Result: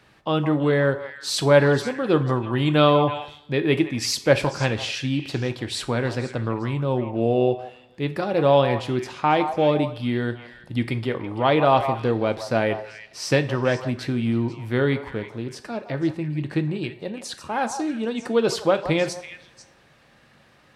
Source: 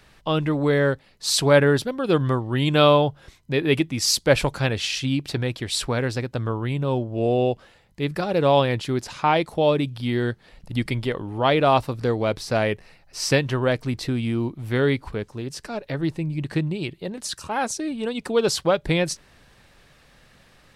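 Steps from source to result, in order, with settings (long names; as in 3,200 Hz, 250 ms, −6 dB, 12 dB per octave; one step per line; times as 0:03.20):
high-pass filter 88 Hz
high-shelf EQ 4,300 Hz −8 dB
echo through a band-pass that steps 164 ms, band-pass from 870 Hz, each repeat 1.4 octaves, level −7 dB
coupled-rooms reverb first 0.39 s, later 1.9 s, from −22 dB, DRR 9.5 dB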